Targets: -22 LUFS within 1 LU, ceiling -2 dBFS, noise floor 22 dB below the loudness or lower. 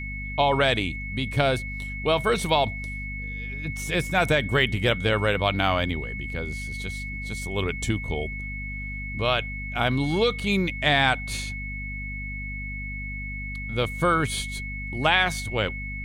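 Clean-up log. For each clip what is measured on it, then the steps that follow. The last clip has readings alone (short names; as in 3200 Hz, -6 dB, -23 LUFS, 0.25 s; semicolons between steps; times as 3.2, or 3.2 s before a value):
hum 50 Hz; harmonics up to 250 Hz; hum level -32 dBFS; steady tone 2200 Hz; tone level -34 dBFS; loudness -25.5 LUFS; peak -6.0 dBFS; loudness target -22.0 LUFS
-> de-hum 50 Hz, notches 5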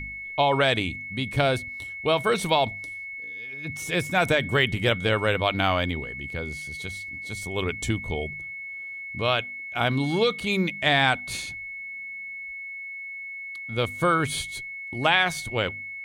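hum none; steady tone 2200 Hz; tone level -34 dBFS
-> notch 2200 Hz, Q 30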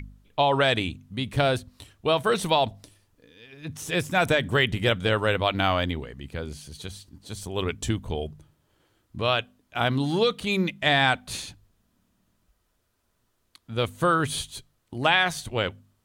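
steady tone none; loudness -25.0 LUFS; peak -6.5 dBFS; loudness target -22.0 LUFS
-> gain +3 dB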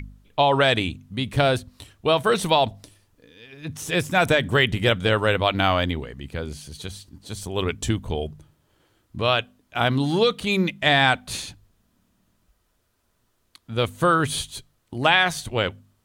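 loudness -22.0 LUFS; peak -3.5 dBFS; noise floor -69 dBFS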